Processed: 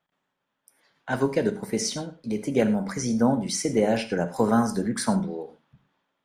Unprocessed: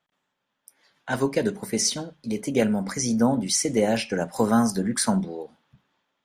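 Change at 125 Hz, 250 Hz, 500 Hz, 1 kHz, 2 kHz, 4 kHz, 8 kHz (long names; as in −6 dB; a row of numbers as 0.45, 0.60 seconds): 0.0, −0.5, 0.0, 0.0, −1.5, −4.5, −6.0 decibels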